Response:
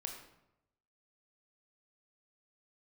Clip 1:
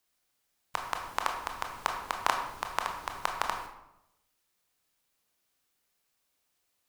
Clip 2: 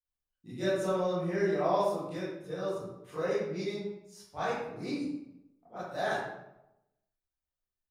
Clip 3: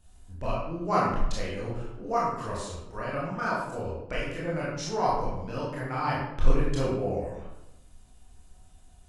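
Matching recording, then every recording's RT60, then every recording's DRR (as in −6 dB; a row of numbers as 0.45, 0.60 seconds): 1; 0.85, 0.85, 0.85 seconds; 2.5, −14.0, −7.0 decibels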